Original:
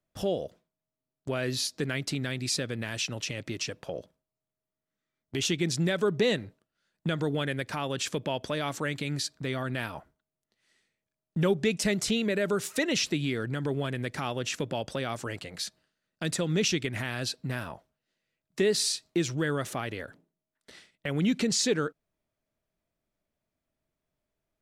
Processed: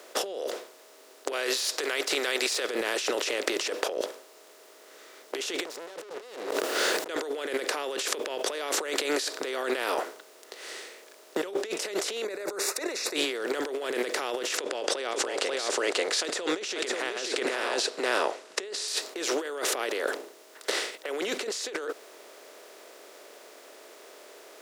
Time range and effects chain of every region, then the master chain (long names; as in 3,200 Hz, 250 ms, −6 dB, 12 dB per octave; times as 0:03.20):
0:01.32–0:02.69: high-pass filter 1,100 Hz 6 dB per octave + de-essing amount 65%
0:05.65–0:07.08: low-shelf EQ 470 Hz +9.5 dB + leveller curve on the samples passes 5 + background raised ahead of every attack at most 26 dB per second
0:12.24–0:13.16: Butterworth band-reject 3,100 Hz, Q 2.4 + downward expander −37 dBFS
0:14.57–0:18.88: low-pass filter 8,600 Hz 24 dB per octave + single-tap delay 539 ms −6 dB
whole clip: compressor on every frequency bin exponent 0.6; Butterworth high-pass 340 Hz 36 dB per octave; compressor whose output falls as the input rises −32 dBFS, ratio −1